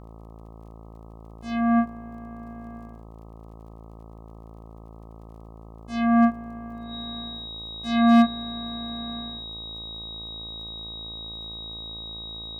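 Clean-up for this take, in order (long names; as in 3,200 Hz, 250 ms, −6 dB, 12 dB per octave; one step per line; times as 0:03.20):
clipped peaks rebuilt −12 dBFS
click removal
hum removal 55.4 Hz, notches 23
notch filter 3,800 Hz, Q 30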